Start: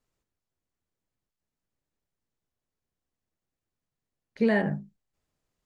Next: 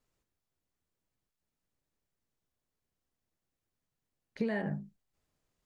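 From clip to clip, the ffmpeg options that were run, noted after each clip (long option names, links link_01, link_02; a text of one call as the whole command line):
ffmpeg -i in.wav -af "acompressor=threshold=-30dB:ratio=6" out.wav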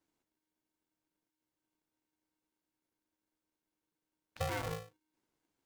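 ffmpeg -i in.wav -af "aeval=exprs='val(0)*sgn(sin(2*PI*310*n/s))':channel_layout=same,volume=-4dB" out.wav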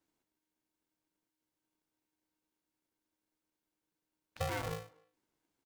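ffmpeg -i in.wav -filter_complex "[0:a]asplit=2[link_01][link_02];[link_02]adelay=250,highpass=300,lowpass=3400,asoftclip=type=hard:threshold=-35.5dB,volume=-24dB[link_03];[link_01][link_03]amix=inputs=2:normalize=0" out.wav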